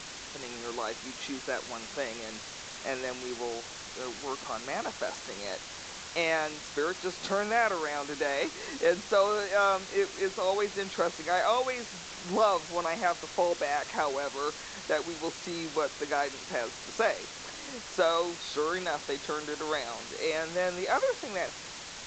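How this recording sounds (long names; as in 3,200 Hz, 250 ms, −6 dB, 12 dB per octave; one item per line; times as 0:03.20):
a quantiser's noise floor 6 bits, dither triangular
G.722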